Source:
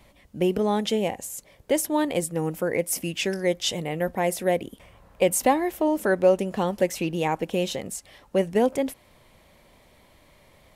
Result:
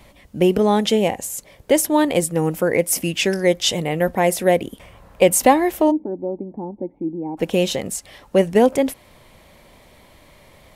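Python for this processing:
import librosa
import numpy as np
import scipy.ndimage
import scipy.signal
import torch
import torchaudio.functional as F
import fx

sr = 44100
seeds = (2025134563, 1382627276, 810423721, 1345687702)

y = fx.formant_cascade(x, sr, vowel='u', at=(5.9, 7.37), fade=0.02)
y = F.gain(torch.from_numpy(y), 7.0).numpy()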